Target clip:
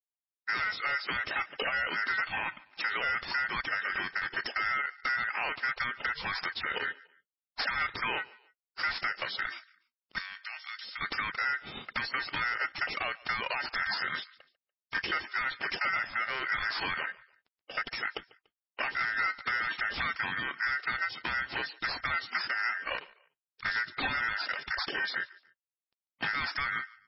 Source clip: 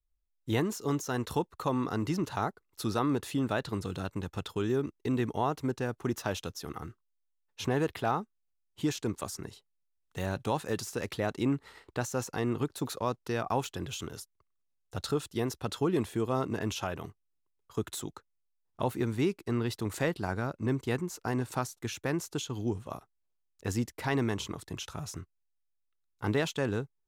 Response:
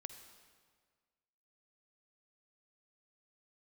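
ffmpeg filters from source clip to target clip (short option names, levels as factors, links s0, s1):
-filter_complex "[0:a]asettb=1/sr,asplit=3[s0][s1][s2];[s0]atrim=end=19.454[s3];[s1]atrim=start=19.45:end=20.06,asetpts=PTS-STARTPTS,afade=t=in:d=0.004:c=qsin,afade=t=out:st=0.606:d=0.004:c=qsin,aeval=exprs='val(0)+0.5*0.00841*sgn(val(0))':c=same[s4];[s2]atrim=start=20.056[s5];[s3][s4]acrossfade=d=0.004:c1=hsin:c2=qsin[s6];[s6][s5]acrossfade=d=0.004:c1=qsin:c2=hsin,highpass=74,dynaudnorm=f=100:g=11:m=3.98,asplit=3[s7][s8][s9];[s7]afade=t=out:st=2.21:d=0.02[s10];[s8]equalizer=f=1300:t=o:w=0.21:g=-12,afade=t=in:st=2.21:d=0.02,afade=t=out:st=2.9:d=0.02[s11];[s9]afade=t=in:st=2.9:d=0.02[s12];[s10][s11][s12]amix=inputs=3:normalize=0,acrusher=bits=9:mix=0:aa=0.000001,alimiter=limit=0.299:level=0:latency=1:release=18,acompressor=threshold=0.0501:ratio=16,aeval=exprs='val(0)*sin(2*PI*1700*n/s)':c=same,asettb=1/sr,asplit=3[s13][s14][s15];[s13]atrim=end=10.184[s16];[s14]atrim=start=10.18:end=11.01,asetpts=PTS-STARTPTS,afade=t=in:d=0.004:c=qsin,afade=t=out:st=0.826:d=0.004:c=qsin,aderivative[s17];[s15]atrim=start=11.006[s18];[s16][s17]acrossfade=d=0.004:c1=hsin:c2=qsin[s19];[s19][s18]acrossfade=d=0.004:c1=qsin:c2=hsin,asoftclip=type=hard:threshold=0.0376,aecho=1:1:145|290:0.0794|0.027,volume=1.58" -ar 16000 -c:a libmp3lame -b:a 16k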